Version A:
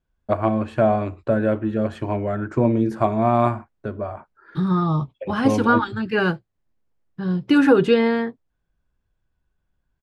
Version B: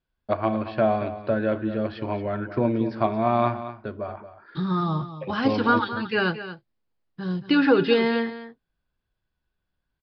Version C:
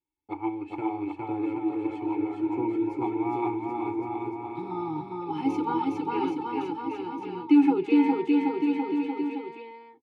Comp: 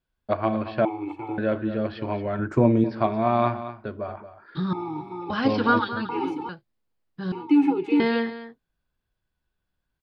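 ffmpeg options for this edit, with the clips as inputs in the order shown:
-filter_complex "[2:a]asplit=4[a][b][c][d];[1:a]asplit=6[e][f][g][h][i][j];[e]atrim=end=0.852[k];[a]atrim=start=0.848:end=1.382[l];[f]atrim=start=1.378:end=2.392[m];[0:a]atrim=start=2.388:end=2.842[n];[g]atrim=start=2.838:end=4.732[o];[b]atrim=start=4.728:end=5.302[p];[h]atrim=start=5.298:end=6.092[q];[c]atrim=start=6.088:end=6.492[r];[i]atrim=start=6.488:end=7.322[s];[d]atrim=start=7.318:end=8.002[t];[j]atrim=start=7.998[u];[k][l]acrossfade=d=0.004:c1=hsin:c2=hsin[v];[v][m]acrossfade=d=0.004:c1=hsin:c2=hsin[w];[w][n]acrossfade=d=0.004:c1=hsin:c2=hsin[x];[x][o]acrossfade=d=0.004:c1=hsin:c2=hsin[y];[y][p]acrossfade=d=0.004:c1=hsin:c2=hsin[z];[z][q]acrossfade=d=0.004:c1=hsin:c2=hsin[aa];[aa][r]acrossfade=d=0.004:c1=hsin:c2=hsin[ab];[ab][s]acrossfade=d=0.004:c1=hsin:c2=hsin[ac];[ac][t]acrossfade=d=0.004:c1=hsin:c2=hsin[ad];[ad][u]acrossfade=d=0.004:c1=hsin:c2=hsin"

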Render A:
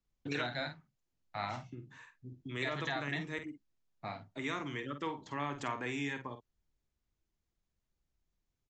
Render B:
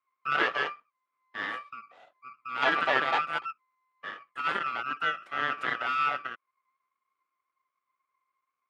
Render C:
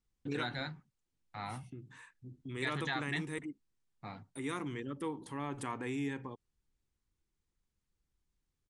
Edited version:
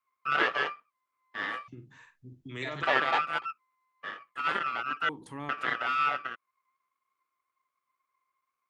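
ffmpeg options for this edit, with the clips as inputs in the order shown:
-filter_complex "[1:a]asplit=3[a][b][c];[a]atrim=end=1.682[d];[0:a]atrim=start=1.678:end=2.832[e];[b]atrim=start=2.828:end=5.092[f];[2:a]atrim=start=5.088:end=5.492[g];[c]atrim=start=5.488[h];[d][e]acrossfade=d=0.004:c1=hsin:c2=hsin[i];[i][f]acrossfade=d=0.004:c1=hsin:c2=hsin[j];[j][g]acrossfade=d=0.004:c1=hsin:c2=hsin[k];[k][h]acrossfade=d=0.004:c1=hsin:c2=hsin"

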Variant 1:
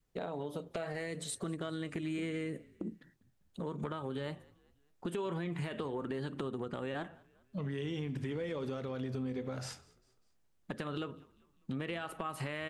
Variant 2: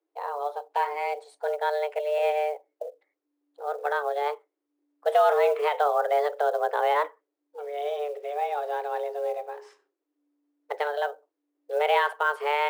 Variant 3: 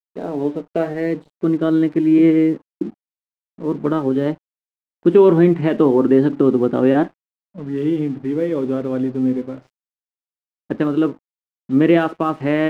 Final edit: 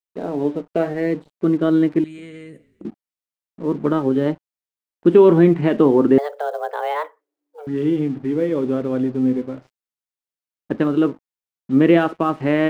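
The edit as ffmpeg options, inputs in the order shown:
-filter_complex "[2:a]asplit=3[a][b][c];[a]atrim=end=2.042[d];[0:a]atrim=start=2.038:end=2.852[e];[b]atrim=start=2.848:end=6.182[f];[1:a]atrim=start=6.178:end=7.672[g];[c]atrim=start=7.668[h];[d][e]acrossfade=d=0.004:c1=hsin:c2=hsin[i];[i][f]acrossfade=d=0.004:c1=hsin:c2=hsin[j];[j][g]acrossfade=d=0.004:c1=hsin:c2=hsin[k];[k][h]acrossfade=d=0.004:c1=hsin:c2=hsin"

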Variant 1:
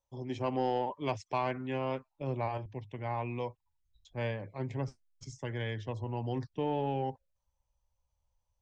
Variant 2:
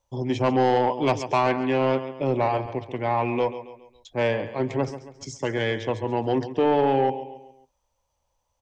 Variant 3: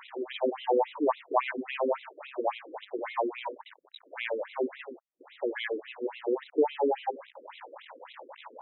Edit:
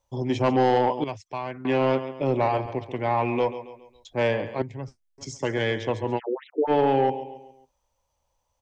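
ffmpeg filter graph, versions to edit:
-filter_complex "[0:a]asplit=2[a][b];[1:a]asplit=4[c][d][e][f];[c]atrim=end=1.042[g];[a]atrim=start=1.038:end=1.652[h];[d]atrim=start=1.648:end=4.622[i];[b]atrim=start=4.618:end=5.182[j];[e]atrim=start=5.178:end=6.2[k];[2:a]atrim=start=6.16:end=6.71[l];[f]atrim=start=6.67[m];[g][h]acrossfade=d=0.004:c1=hsin:c2=hsin[n];[n][i]acrossfade=d=0.004:c1=hsin:c2=hsin[o];[o][j]acrossfade=d=0.004:c1=hsin:c2=hsin[p];[p][k]acrossfade=d=0.004:c1=hsin:c2=hsin[q];[q][l]acrossfade=d=0.04:c1=tri:c2=tri[r];[r][m]acrossfade=d=0.04:c1=tri:c2=tri"

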